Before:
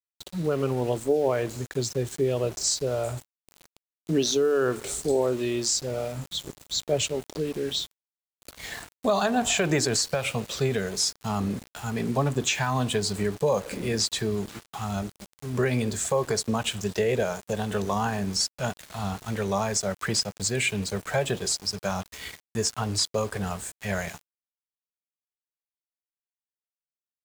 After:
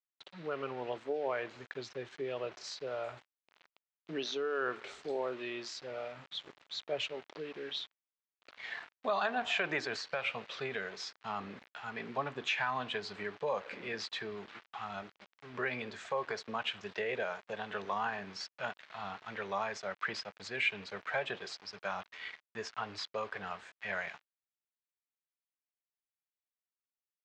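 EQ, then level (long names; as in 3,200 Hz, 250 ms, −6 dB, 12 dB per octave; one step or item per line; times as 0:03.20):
resonant band-pass 2,000 Hz, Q 0.8
high-frequency loss of the air 200 metres
−1.0 dB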